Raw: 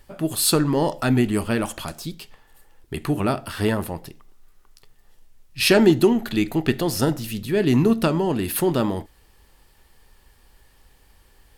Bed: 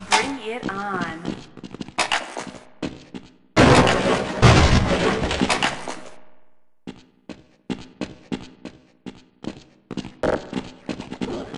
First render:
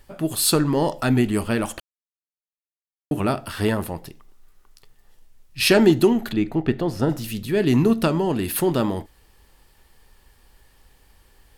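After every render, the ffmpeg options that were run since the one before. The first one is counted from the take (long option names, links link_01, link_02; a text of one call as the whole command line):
ffmpeg -i in.wav -filter_complex "[0:a]asplit=3[link_01][link_02][link_03];[link_01]afade=type=out:start_time=6.32:duration=0.02[link_04];[link_02]lowpass=frequency=1300:poles=1,afade=type=in:start_time=6.32:duration=0.02,afade=type=out:start_time=7.09:duration=0.02[link_05];[link_03]afade=type=in:start_time=7.09:duration=0.02[link_06];[link_04][link_05][link_06]amix=inputs=3:normalize=0,asplit=3[link_07][link_08][link_09];[link_07]atrim=end=1.8,asetpts=PTS-STARTPTS,afade=type=out:start_time=1.796:duration=0.004:curve=hsin[link_10];[link_08]atrim=start=1.8:end=3.11,asetpts=PTS-STARTPTS,volume=0[link_11];[link_09]atrim=start=3.11,asetpts=PTS-STARTPTS,afade=type=in:duration=0.004:curve=hsin[link_12];[link_10][link_11][link_12]concat=n=3:v=0:a=1" out.wav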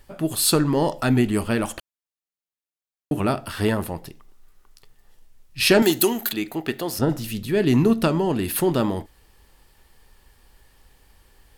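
ffmpeg -i in.wav -filter_complex "[0:a]asettb=1/sr,asplit=3[link_01][link_02][link_03];[link_01]atrim=end=5.824[link_04];[link_02]atrim=start=5.82:end=6.99,asetpts=PTS-STARTPTS,afade=type=in:duration=0.004:curve=qsin,afade=type=out:start_time=1.166:duration=0.004:curve=qsin,aemphasis=mode=production:type=riaa[link_05];[link_03]atrim=start=6.986[link_06];[link_04][link_05]acrossfade=duration=0.004:curve1=hsin:curve2=qsin[link_07];[link_07][link_06]acrossfade=duration=0.004:curve1=qsin:curve2=hsin" out.wav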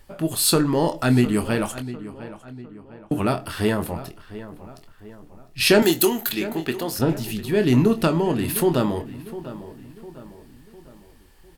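ffmpeg -i in.wav -filter_complex "[0:a]asplit=2[link_01][link_02];[link_02]adelay=24,volume=-10dB[link_03];[link_01][link_03]amix=inputs=2:normalize=0,asplit=2[link_04][link_05];[link_05]adelay=704,lowpass=frequency=2500:poles=1,volume=-14.5dB,asplit=2[link_06][link_07];[link_07]adelay=704,lowpass=frequency=2500:poles=1,volume=0.47,asplit=2[link_08][link_09];[link_09]adelay=704,lowpass=frequency=2500:poles=1,volume=0.47,asplit=2[link_10][link_11];[link_11]adelay=704,lowpass=frequency=2500:poles=1,volume=0.47[link_12];[link_04][link_06][link_08][link_10][link_12]amix=inputs=5:normalize=0" out.wav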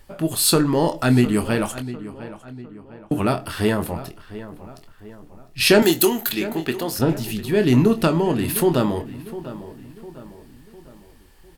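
ffmpeg -i in.wav -af "volume=1.5dB" out.wav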